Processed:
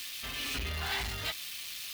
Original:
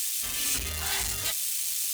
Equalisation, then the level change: distance through air 350 m; treble shelf 3 kHz +8.5 dB; treble shelf 10 kHz +10.5 dB; 0.0 dB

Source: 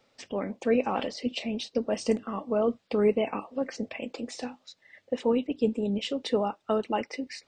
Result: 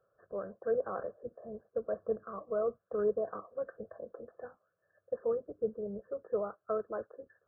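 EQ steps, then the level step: high-pass 42 Hz; brick-wall FIR low-pass 1.8 kHz; static phaser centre 1.3 kHz, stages 8; -4.5 dB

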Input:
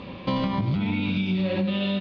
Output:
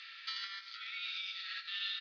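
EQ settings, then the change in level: dynamic bell 2.2 kHz, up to -6 dB, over -47 dBFS, Q 1.1; rippled Chebyshev high-pass 1.3 kHz, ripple 9 dB; +5.5 dB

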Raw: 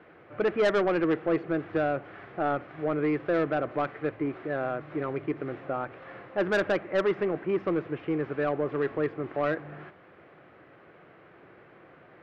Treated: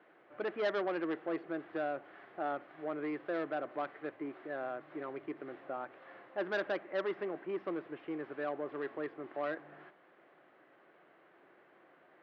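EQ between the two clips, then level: cabinet simulation 310–5000 Hz, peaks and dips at 470 Hz -5 dB, 1.3 kHz -3 dB, 2.4 kHz -4 dB; -7.0 dB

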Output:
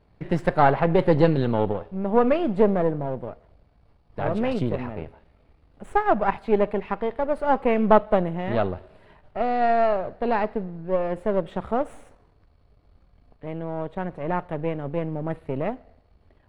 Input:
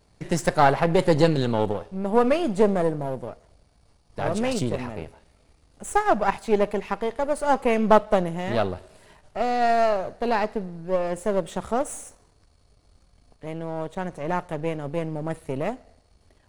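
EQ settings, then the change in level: distance through air 450 m; treble shelf 4.8 kHz +8 dB; +1.5 dB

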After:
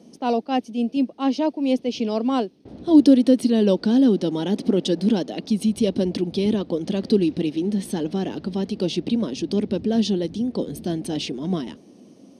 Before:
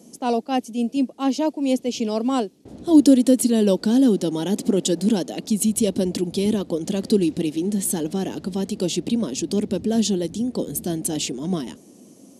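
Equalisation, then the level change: Savitzky-Golay filter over 15 samples; 0.0 dB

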